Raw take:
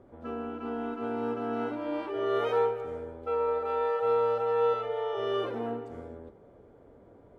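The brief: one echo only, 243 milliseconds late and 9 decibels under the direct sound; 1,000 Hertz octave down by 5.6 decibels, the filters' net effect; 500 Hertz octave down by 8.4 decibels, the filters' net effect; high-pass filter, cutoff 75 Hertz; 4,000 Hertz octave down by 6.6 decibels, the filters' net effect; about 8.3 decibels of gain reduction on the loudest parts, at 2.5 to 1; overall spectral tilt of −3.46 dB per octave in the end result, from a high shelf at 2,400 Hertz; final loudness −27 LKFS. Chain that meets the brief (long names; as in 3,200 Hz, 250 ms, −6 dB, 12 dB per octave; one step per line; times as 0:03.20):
high-pass filter 75 Hz
parametric band 500 Hz −8.5 dB
parametric band 1,000 Hz −3.5 dB
high-shelf EQ 2,400 Hz −6 dB
parametric band 4,000 Hz −4 dB
downward compressor 2.5 to 1, threshold −43 dBFS
single-tap delay 243 ms −9 dB
level +16 dB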